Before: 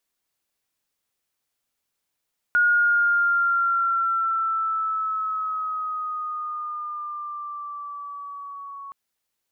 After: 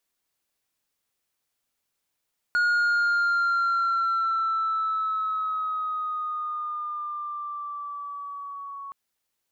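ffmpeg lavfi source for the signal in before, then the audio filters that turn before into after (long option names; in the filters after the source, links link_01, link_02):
-f lavfi -i "aevalsrc='pow(10,(-15-20*t/6.37)/20)*sin(2*PI*1440*6.37/(-4.5*log(2)/12)*(exp(-4.5*log(2)/12*t/6.37)-1))':duration=6.37:sample_rate=44100"
-af "asoftclip=type=tanh:threshold=-19.5dB"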